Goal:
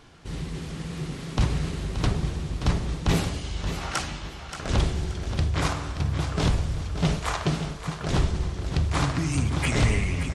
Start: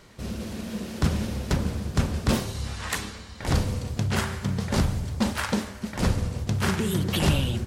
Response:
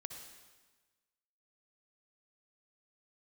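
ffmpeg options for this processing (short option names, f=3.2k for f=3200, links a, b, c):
-af "asetrate=32667,aresample=44100,aecho=1:1:577|1154|1731:0.335|0.0938|0.0263"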